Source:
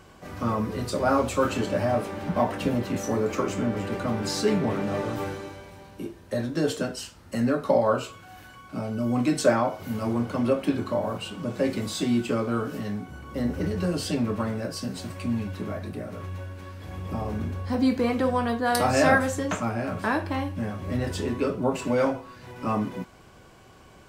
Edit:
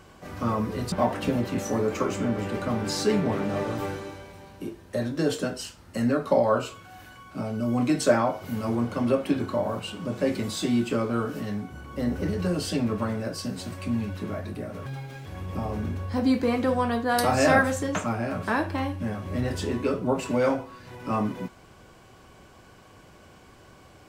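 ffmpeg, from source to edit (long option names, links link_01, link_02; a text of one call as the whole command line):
ffmpeg -i in.wav -filter_complex "[0:a]asplit=4[link_01][link_02][link_03][link_04];[link_01]atrim=end=0.922[link_05];[link_02]atrim=start=2.298:end=16.244[link_06];[link_03]atrim=start=16.24:end=16.82,asetpts=PTS-STARTPTS,asetrate=64386,aresample=44100,atrim=end_sample=17519,asetpts=PTS-STARTPTS[link_07];[link_04]atrim=start=16.816[link_08];[link_05][link_06]acrossfade=duration=0.004:curve1=hsin:curve2=hsin[link_09];[link_09][link_07]acrossfade=duration=0.004:curve1=hsin:curve2=hsin[link_10];[link_10][link_08]acrossfade=duration=0.004:curve1=hsin:curve2=hsin" out.wav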